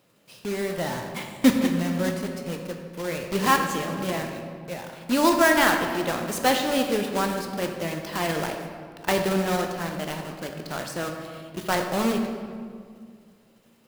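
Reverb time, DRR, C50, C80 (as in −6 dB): 2.1 s, 3.5 dB, 5.0 dB, 6.5 dB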